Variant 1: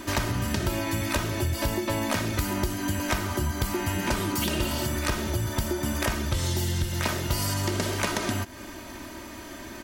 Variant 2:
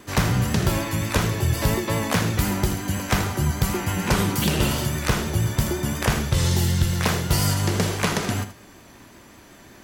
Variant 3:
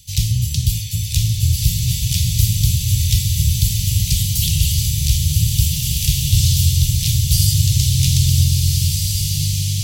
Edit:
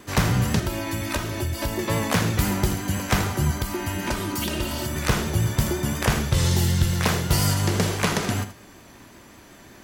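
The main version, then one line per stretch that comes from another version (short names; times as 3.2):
2
0.6–1.79 from 1
3.58–4.96 from 1
not used: 3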